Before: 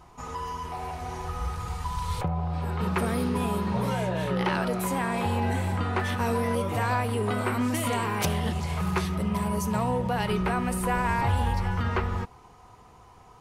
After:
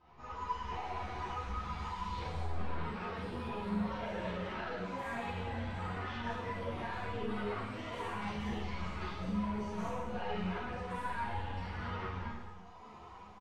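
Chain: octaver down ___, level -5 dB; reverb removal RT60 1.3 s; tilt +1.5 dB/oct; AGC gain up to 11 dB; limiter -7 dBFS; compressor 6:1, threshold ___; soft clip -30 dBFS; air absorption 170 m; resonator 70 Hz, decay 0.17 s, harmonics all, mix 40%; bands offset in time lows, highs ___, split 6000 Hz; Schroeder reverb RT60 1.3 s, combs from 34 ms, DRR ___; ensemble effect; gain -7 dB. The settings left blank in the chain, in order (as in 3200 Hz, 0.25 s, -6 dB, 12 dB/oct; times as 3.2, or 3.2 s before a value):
1 oct, -28 dBFS, 0.18 s, -8 dB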